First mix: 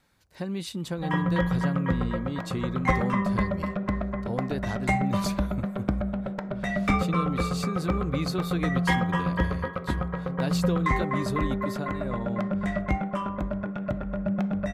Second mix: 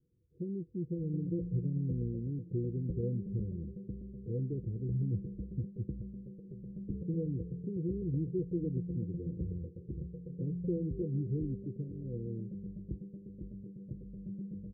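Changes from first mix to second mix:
background −8.0 dB
master: add Chebyshev low-pass with heavy ripple 500 Hz, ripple 9 dB

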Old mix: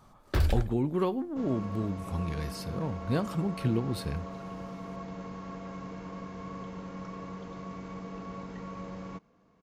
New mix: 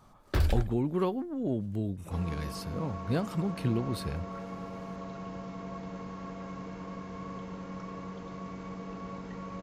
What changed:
second sound: entry +0.75 s
reverb: off

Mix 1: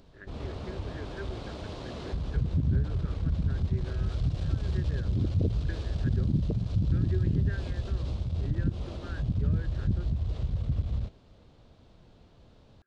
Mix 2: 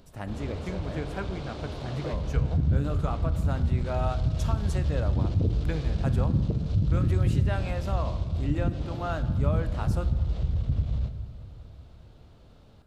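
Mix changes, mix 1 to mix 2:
speech: remove pair of resonant band-passes 800 Hz, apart 2.1 octaves
reverb: on, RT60 1.6 s

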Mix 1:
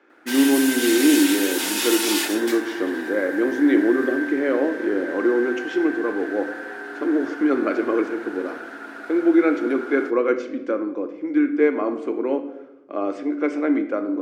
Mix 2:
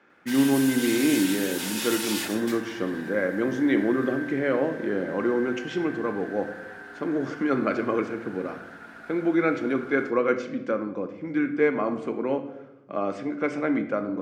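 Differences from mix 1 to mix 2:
background −7.0 dB
master: add low shelf with overshoot 220 Hz +11.5 dB, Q 3

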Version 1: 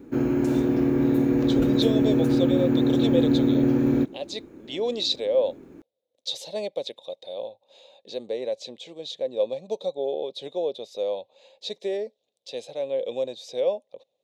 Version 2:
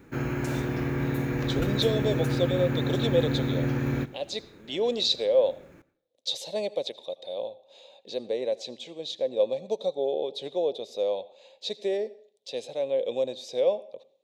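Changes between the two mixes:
background: add drawn EQ curve 160 Hz 0 dB, 260 Hz −12 dB, 1,900 Hz +6 dB, 3,200 Hz +2 dB
reverb: on, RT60 0.50 s

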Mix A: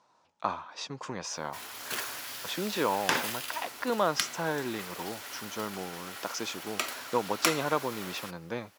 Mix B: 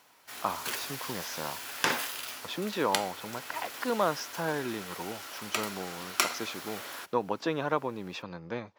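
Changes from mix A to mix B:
speech: add high-frequency loss of the air 93 metres
background: entry −1.25 s

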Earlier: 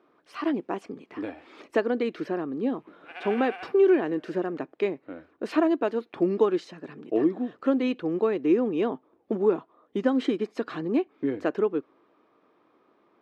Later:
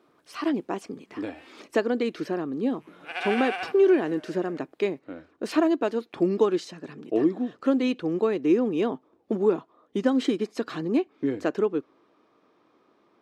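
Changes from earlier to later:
background +7.5 dB
master: add bass and treble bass +3 dB, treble +11 dB

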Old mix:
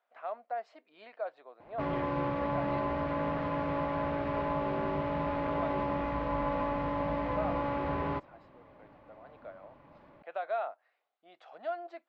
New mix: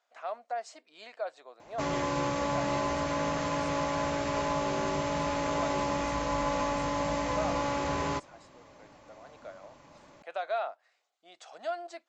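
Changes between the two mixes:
background: remove high-frequency loss of the air 120 metres
master: remove high-frequency loss of the air 400 metres

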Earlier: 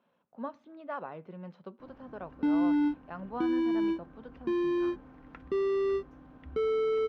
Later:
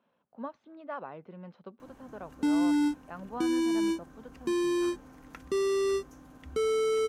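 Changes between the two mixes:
background: remove high-frequency loss of the air 370 metres
reverb: off

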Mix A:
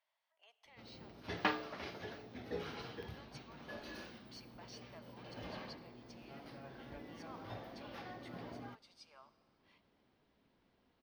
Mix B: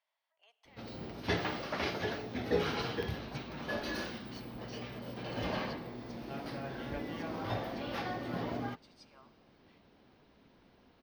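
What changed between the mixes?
first sound +11.5 dB
second sound −5.5 dB

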